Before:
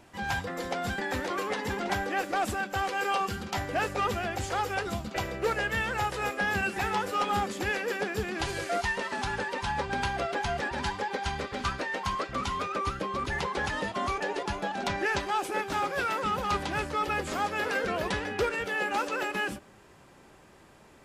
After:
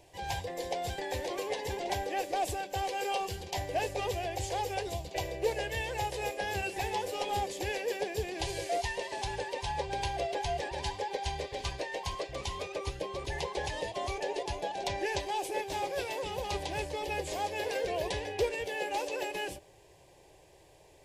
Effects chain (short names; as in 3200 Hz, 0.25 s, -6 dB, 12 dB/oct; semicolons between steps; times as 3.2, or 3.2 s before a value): fixed phaser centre 550 Hz, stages 4